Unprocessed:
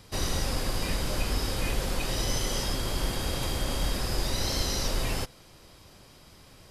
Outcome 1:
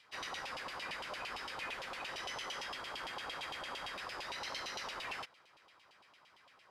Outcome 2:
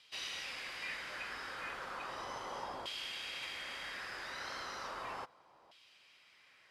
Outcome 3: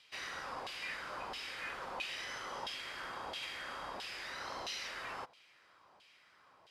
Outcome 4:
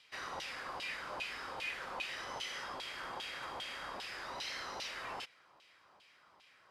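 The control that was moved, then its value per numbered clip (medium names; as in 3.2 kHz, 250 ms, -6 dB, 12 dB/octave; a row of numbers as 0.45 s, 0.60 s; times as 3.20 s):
LFO band-pass, rate: 8.8 Hz, 0.35 Hz, 1.5 Hz, 2.5 Hz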